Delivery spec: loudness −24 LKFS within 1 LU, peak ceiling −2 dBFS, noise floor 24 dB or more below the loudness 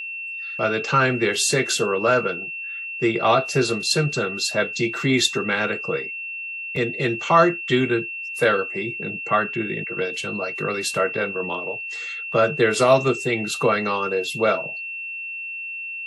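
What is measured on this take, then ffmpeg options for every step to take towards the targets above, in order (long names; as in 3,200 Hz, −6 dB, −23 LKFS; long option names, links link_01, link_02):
interfering tone 2,700 Hz; level of the tone −29 dBFS; integrated loudness −22.0 LKFS; sample peak −4.5 dBFS; target loudness −24.0 LKFS
→ -af "bandreject=frequency=2700:width=30"
-af "volume=-2dB"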